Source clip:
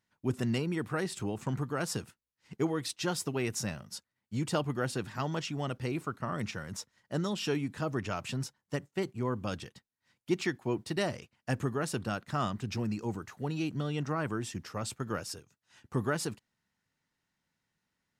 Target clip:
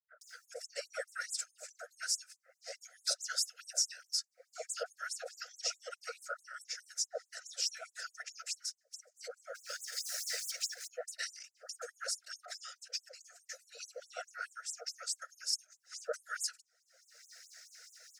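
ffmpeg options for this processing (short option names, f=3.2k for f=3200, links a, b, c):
-filter_complex "[0:a]asettb=1/sr,asplit=3[a][b][c];[a]atrim=end=9.334[d];[b]atrim=start=9.33:end=10.66,asetpts=PTS-STARTPTS,afade=t=in:d=0.004:c=qsin,afade=t=out:st=1.326:d=0.004:c=qsin,aeval=exprs='val(0)+0.5*0.0178*sgn(val(0))':c=same[e];[c]atrim=start=10.656[f];[d][e]acrossfade=d=0.004:c1=hsin:c2=qsin[g];[g][f]acrossfade=d=0.004:c1=qsin:c2=hsin,firequalizer=gain_entry='entry(100,0);entry(270,-28);entry(410,-6);entry(930,-25);entry(1400,-9);entry(3100,-23);entry(5100,-3);entry(12000,-16)':delay=0.05:min_phase=1,afftfilt=real='hypot(re,im)*cos(2*PI*random(0))':imag='hypot(re,im)*sin(2*PI*random(1))':win_size=512:overlap=0.75,acompressor=mode=upward:threshold=-42dB:ratio=2.5,flanger=delay=0.6:depth=2.3:regen=-57:speed=0.31:shape=sinusoidal,acontrast=34,asuperstop=centerf=980:order=20:qfactor=1.9,acrossover=split=1200[h][i];[i]adelay=220[j];[h][j]amix=inputs=2:normalize=0,afftfilt=real='re*gte(b*sr/1024,440*pow(6800/440,0.5+0.5*sin(2*PI*4.7*pts/sr)))':imag='im*gte(b*sr/1024,440*pow(6800/440,0.5+0.5*sin(2*PI*4.7*pts/sr)))':win_size=1024:overlap=0.75,volume=14.5dB"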